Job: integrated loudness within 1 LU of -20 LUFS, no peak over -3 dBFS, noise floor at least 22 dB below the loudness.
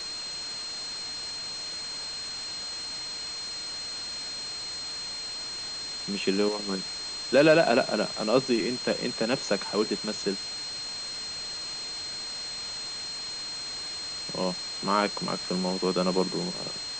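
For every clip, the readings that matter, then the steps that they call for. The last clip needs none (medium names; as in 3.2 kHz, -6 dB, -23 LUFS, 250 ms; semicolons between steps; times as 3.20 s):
steady tone 4.2 kHz; tone level -34 dBFS; noise floor -36 dBFS; noise floor target -51 dBFS; loudness -29.0 LUFS; peak level -8.5 dBFS; loudness target -20.0 LUFS
-> band-stop 4.2 kHz, Q 30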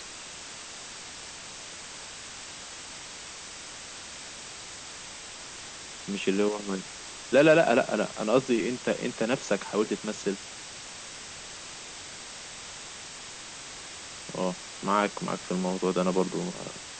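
steady tone not found; noise floor -43 dBFS; noise floor target -53 dBFS
-> noise reduction 10 dB, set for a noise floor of -43 dBFS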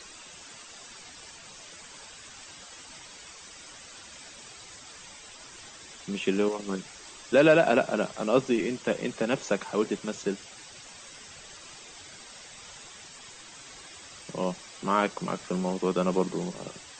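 noise floor -48 dBFS; noise floor target -50 dBFS
-> noise reduction 6 dB, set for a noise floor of -48 dBFS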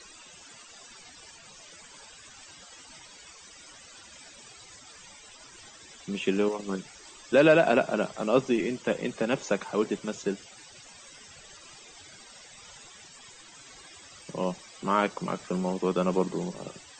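noise floor -51 dBFS; loudness -27.5 LUFS; peak level -9.0 dBFS; loudness target -20.0 LUFS
-> trim +7.5 dB; peak limiter -3 dBFS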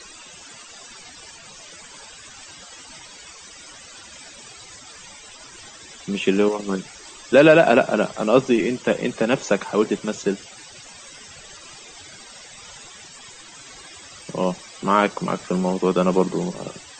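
loudness -20.5 LUFS; peak level -3.0 dBFS; noise floor -43 dBFS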